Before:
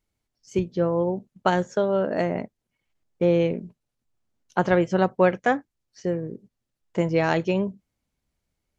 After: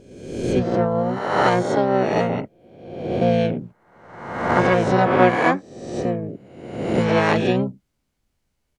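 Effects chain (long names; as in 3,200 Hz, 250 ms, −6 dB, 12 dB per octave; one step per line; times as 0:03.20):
peak hold with a rise ahead of every peak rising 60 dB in 1.03 s
pitch-shifted copies added −7 semitones −3 dB, +5 semitones −5 dB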